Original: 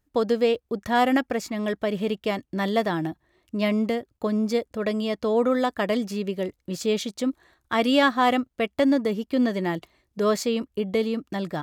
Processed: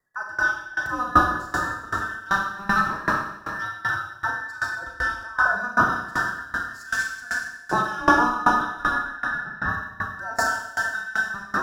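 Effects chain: every band turned upside down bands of 2 kHz; FFT filter 1.2 kHz 0 dB, 2.6 kHz -21 dB, 4.9 kHz -6 dB; 2.13–3.63 s: waveshaping leveller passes 1; in parallel at -1.5 dB: gain riding 2 s; 8.83–9.69 s: on the sum: distance through air 210 m; on a send: thinning echo 142 ms, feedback 71%, high-pass 1.1 kHz, level -10.5 dB; on the sum: Schroeder reverb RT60 2.5 s, combs from 30 ms, DRR -4.5 dB; sawtooth tremolo in dB decaying 2.6 Hz, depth 21 dB

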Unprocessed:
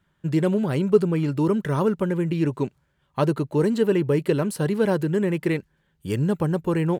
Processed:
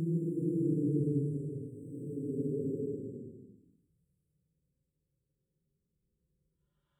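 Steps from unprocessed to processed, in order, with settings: short-time spectra conjugated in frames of 83 ms; spectral selection erased 0.75–3.06 s, 540–7400 Hz; Paulstretch 10×, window 0.10 s, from 2.37 s; trim -7.5 dB

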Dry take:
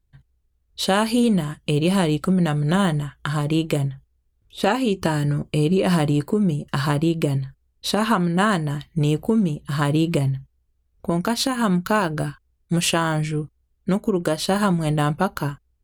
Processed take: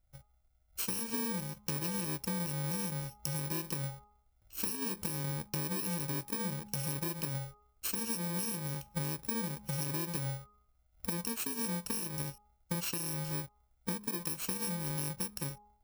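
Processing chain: bit-reversed sample order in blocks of 64 samples; de-hum 207.6 Hz, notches 6; compression 6:1, threshold -30 dBFS, peak gain reduction 15 dB; trim -4 dB

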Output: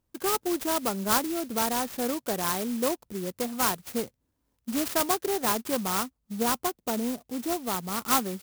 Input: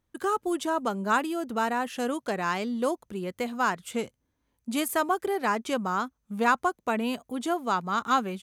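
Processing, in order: 6.03–8.03 s: peaking EQ 2.1 kHz -8 dB 2.1 oct; sampling jitter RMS 0.12 ms

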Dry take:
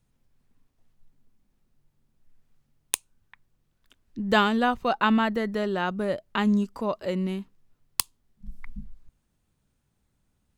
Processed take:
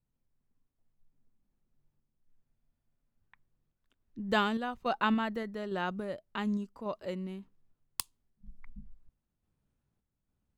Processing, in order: random-step tremolo; spectral freeze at 2.47 s, 0.70 s; tape noise reduction on one side only decoder only; trim -6 dB

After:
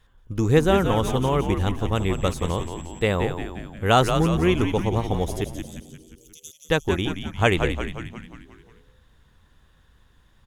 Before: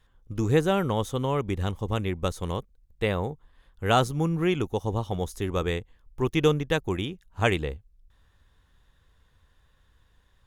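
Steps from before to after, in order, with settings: 1.94–3.14 s: whistle 7.7 kHz -53 dBFS; 5.44–6.69 s: inverse Chebyshev high-pass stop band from 1.7 kHz, stop band 60 dB; frequency-shifting echo 177 ms, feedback 56%, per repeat -83 Hz, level -7 dB; trim +4 dB

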